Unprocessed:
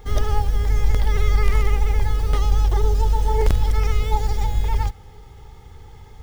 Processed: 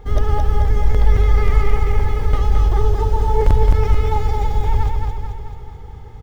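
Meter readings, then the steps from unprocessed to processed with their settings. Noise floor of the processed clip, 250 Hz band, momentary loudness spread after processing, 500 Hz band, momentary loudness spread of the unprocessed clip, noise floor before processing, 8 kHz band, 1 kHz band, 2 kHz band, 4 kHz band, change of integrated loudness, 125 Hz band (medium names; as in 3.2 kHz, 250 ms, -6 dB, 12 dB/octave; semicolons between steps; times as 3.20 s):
-34 dBFS, +4.5 dB, 15 LU, +5.0 dB, 4 LU, -43 dBFS, no reading, +4.0 dB, +1.0 dB, -2.5 dB, +3.0 dB, +3.5 dB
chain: treble shelf 2.6 kHz -12 dB; feedback delay 218 ms, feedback 56%, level -4 dB; trim +3.5 dB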